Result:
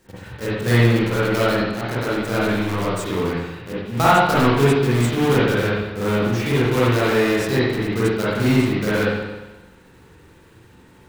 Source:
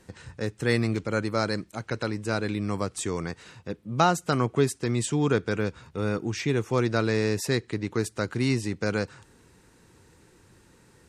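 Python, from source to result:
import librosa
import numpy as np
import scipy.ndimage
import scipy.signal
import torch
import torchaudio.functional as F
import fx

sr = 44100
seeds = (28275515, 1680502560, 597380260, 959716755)

y = fx.block_float(x, sr, bits=3)
y = fx.rev_spring(y, sr, rt60_s=1.1, pass_ms=(43, 59), chirp_ms=35, drr_db=-9.5)
y = y * librosa.db_to_amplitude(-2.0)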